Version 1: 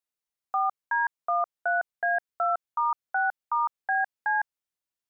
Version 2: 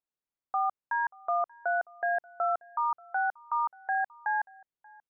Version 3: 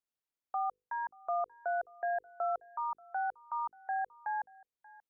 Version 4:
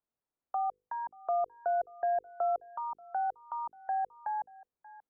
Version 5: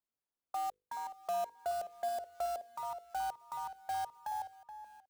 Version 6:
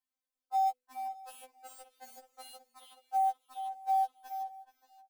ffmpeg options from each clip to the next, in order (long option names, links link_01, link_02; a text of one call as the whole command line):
ffmpeg -i in.wav -filter_complex "[0:a]lowpass=frequency=1100:poles=1,asplit=2[link_01][link_02];[link_02]adelay=583.1,volume=-24dB,highshelf=frequency=4000:gain=-13.1[link_03];[link_01][link_03]amix=inputs=2:normalize=0" out.wav
ffmpeg -i in.wav -filter_complex "[0:a]bandreject=frequency=50:width_type=h:width=6,bandreject=frequency=100:width_type=h:width=6,bandreject=frequency=150:width_type=h:width=6,bandreject=frequency=200:width_type=h:width=6,bandreject=frequency=250:width_type=h:width=6,bandreject=frequency=300:width_type=h:width=6,bandreject=frequency=350:width_type=h:width=6,bandreject=frequency=400:width_type=h:width=6,bandreject=frequency=450:width_type=h:width=6,bandreject=frequency=500:width_type=h:width=6,acrossover=split=600|900[link_01][link_02][link_03];[link_03]alimiter=level_in=13dB:limit=-24dB:level=0:latency=1:release=453,volume=-13dB[link_04];[link_01][link_02][link_04]amix=inputs=3:normalize=0,volume=-2.5dB" out.wav
ffmpeg -i in.wav -filter_complex "[0:a]lowpass=1100,acrossover=split=580|750[link_01][link_02][link_03];[link_03]acompressor=threshold=-50dB:ratio=6[link_04];[link_01][link_02][link_04]amix=inputs=3:normalize=0,volume=6.5dB" out.wav
ffmpeg -i in.wav -filter_complex "[0:a]acrusher=bits=3:mode=log:mix=0:aa=0.000001,asplit=2[link_01][link_02];[link_02]adelay=425.7,volume=-10dB,highshelf=frequency=4000:gain=-9.58[link_03];[link_01][link_03]amix=inputs=2:normalize=0,volume=-5dB" out.wav
ffmpeg -i in.wav -af "afftfilt=real='re*3.46*eq(mod(b,12),0)':imag='im*3.46*eq(mod(b,12),0)':win_size=2048:overlap=0.75,volume=1dB" out.wav